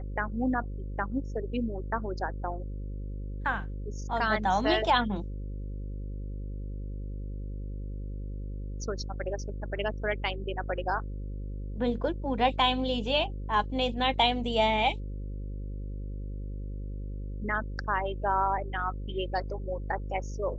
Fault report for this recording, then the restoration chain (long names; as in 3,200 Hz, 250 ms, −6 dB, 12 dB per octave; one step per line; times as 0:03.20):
mains buzz 50 Hz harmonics 11 −36 dBFS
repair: hum removal 50 Hz, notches 11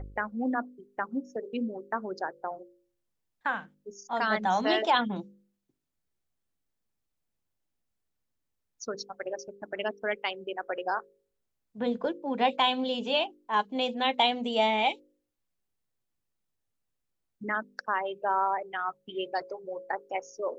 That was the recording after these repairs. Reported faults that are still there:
none of them is left